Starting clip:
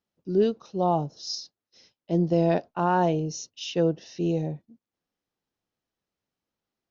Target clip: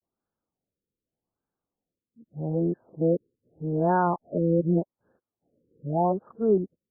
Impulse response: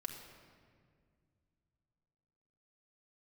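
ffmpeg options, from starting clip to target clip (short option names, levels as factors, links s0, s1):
-af "areverse,afftfilt=real='re*lt(b*sr/1024,520*pow(1800/520,0.5+0.5*sin(2*PI*0.83*pts/sr)))':imag='im*lt(b*sr/1024,520*pow(1800/520,0.5+0.5*sin(2*PI*0.83*pts/sr)))':win_size=1024:overlap=0.75"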